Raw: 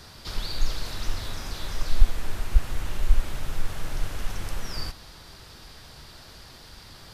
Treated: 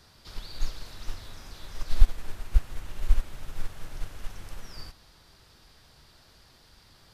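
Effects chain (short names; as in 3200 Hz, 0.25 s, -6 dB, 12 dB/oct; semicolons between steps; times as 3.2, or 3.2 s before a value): upward expander 1.5:1, over -27 dBFS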